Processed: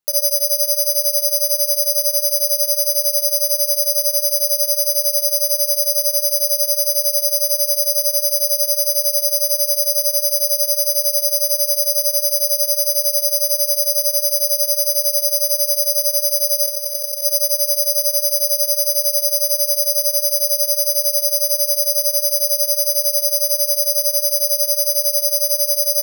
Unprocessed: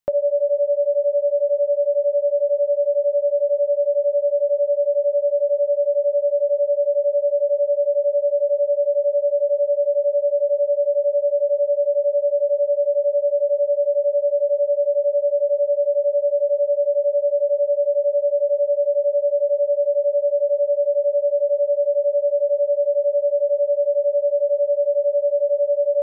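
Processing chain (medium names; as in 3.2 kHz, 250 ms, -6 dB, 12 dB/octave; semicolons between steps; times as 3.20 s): bass shelf 490 Hz -2 dB; 16.65–17.22 s: compressor with a negative ratio -24 dBFS, ratio -0.5; delay 77 ms -12 dB; gated-style reverb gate 470 ms flat, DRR 9.5 dB; careless resampling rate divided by 8×, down none, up zero stuff; trim -8 dB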